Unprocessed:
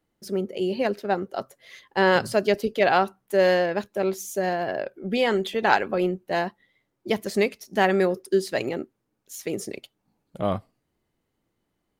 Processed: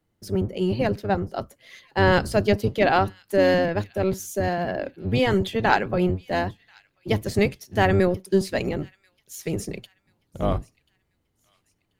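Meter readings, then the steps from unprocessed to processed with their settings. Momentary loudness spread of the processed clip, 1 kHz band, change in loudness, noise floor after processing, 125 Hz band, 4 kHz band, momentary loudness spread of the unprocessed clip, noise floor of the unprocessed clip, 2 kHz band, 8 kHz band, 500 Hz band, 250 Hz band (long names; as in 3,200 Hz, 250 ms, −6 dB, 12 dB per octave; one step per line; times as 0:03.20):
12 LU, 0.0 dB, +1.0 dB, −72 dBFS, +9.5 dB, 0.0 dB, 13 LU, −77 dBFS, 0.0 dB, 0.0 dB, 0.0 dB, +3.0 dB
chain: sub-octave generator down 1 octave, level +3 dB
delay with a high-pass on its return 1,036 ms, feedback 34%, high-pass 2,500 Hz, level −22 dB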